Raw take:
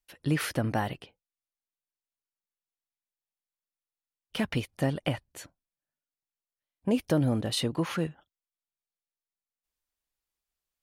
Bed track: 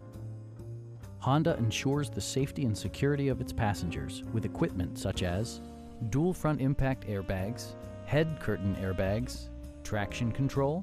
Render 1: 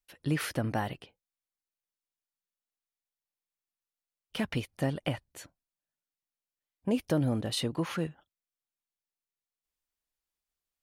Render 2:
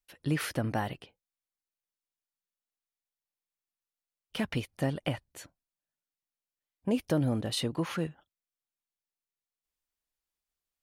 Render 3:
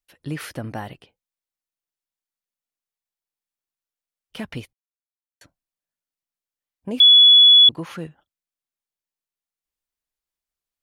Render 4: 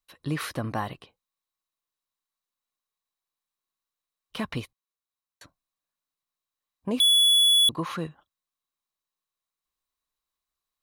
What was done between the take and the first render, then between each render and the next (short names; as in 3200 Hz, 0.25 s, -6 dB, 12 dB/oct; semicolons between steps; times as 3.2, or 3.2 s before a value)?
gain -2.5 dB
nothing audible
4.73–5.41 mute; 7–7.69 bleep 3400 Hz -7 dBFS
overloaded stage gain 18.5 dB; small resonant body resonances 1100/3900 Hz, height 12 dB, ringing for 20 ms